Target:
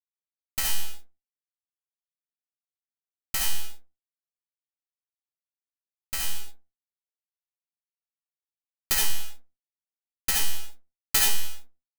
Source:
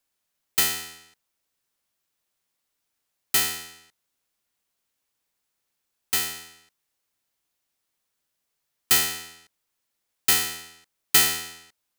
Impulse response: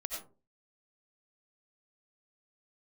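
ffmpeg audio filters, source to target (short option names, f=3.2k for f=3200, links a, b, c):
-filter_complex "[0:a]lowshelf=f=170:g=8.5,bandreject=f=3.5k:w=8.6,acrossover=split=830[a][b];[a]acompressor=threshold=-43dB:ratio=6[c];[c][b]amix=inputs=2:normalize=0,acrusher=bits=3:dc=4:mix=0:aa=0.000001,asplit=2[d][e];[e]volume=15dB,asoftclip=hard,volume=-15dB,volume=-3dB[f];[d][f]amix=inputs=2:normalize=0[g];[1:a]atrim=start_sample=2205,asetrate=57330,aresample=44100[h];[g][h]afir=irnorm=-1:irlink=0,volume=-3dB"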